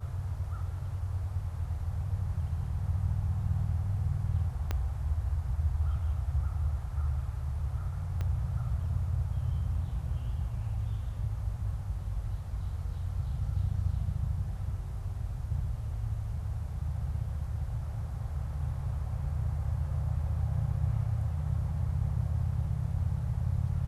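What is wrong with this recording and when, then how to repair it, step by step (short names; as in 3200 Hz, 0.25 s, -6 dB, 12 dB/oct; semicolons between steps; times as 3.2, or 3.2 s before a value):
4.71 pop -18 dBFS
8.21 pop -23 dBFS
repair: de-click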